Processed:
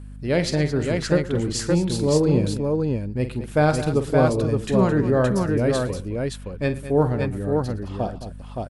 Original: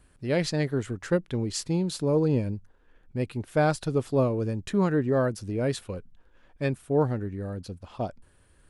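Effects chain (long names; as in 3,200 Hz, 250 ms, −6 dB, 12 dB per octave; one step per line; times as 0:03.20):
multi-tap delay 47/112/216/570 ms −11/−19.5/−13/−3.5 dB
mains hum 50 Hz, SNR 16 dB
level +4 dB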